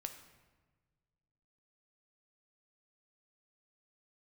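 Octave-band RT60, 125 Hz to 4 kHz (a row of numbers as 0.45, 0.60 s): 2.3, 2.0, 1.5, 1.3, 1.1, 0.90 s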